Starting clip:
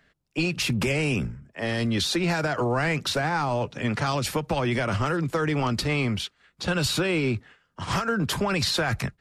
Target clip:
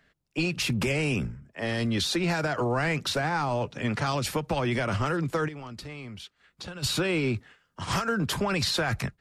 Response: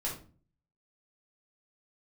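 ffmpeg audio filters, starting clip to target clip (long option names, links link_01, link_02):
-filter_complex "[0:a]asplit=3[link_01][link_02][link_03];[link_01]afade=type=out:start_time=5.47:duration=0.02[link_04];[link_02]acompressor=threshold=-37dB:ratio=5,afade=type=in:start_time=5.47:duration=0.02,afade=type=out:start_time=6.82:duration=0.02[link_05];[link_03]afade=type=in:start_time=6.82:duration=0.02[link_06];[link_04][link_05][link_06]amix=inputs=3:normalize=0,asettb=1/sr,asplit=3[link_07][link_08][link_09];[link_07]atrim=end=7.344[link_10];[link_08]atrim=start=7.34:end=8.21,asetpts=PTS-STARTPTS,afade=type=in:duration=0.004:curve=qsin,afade=type=out:start_time=0.866:duration=0.004:curve=qsin,highshelf=frequency=5000:gain=5[link_11];[link_09]atrim=start=8.206[link_12];[link_10][link_11]acrossfade=duration=0.004:curve1=hsin:curve2=qsin[link_13];[link_13][link_12]acrossfade=duration=0.004:curve1=qsin:curve2=hsin,volume=-2dB"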